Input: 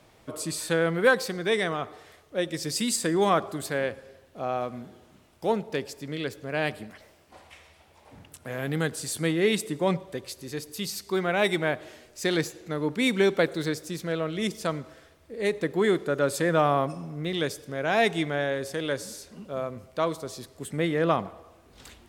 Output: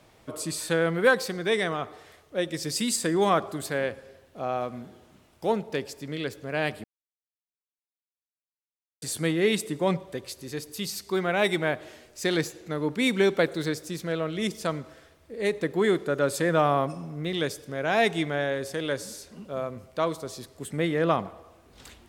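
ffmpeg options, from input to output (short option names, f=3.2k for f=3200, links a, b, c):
-filter_complex "[0:a]asplit=3[a][b][c];[a]atrim=end=6.84,asetpts=PTS-STARTPTS,afade=t=out:st=6.836:d=0.004:c=hsin[d];[b]atrim=start=6.84:end=9.02,asetpts=PTS-STARTPTS,volume=0[e];[c]atrim=start=9.02,asetpts=PTS-STARTPTS,afade=t=in:d=0.004:c=hsin[f];[d][e][f]concat=n=3:v=0:a=1"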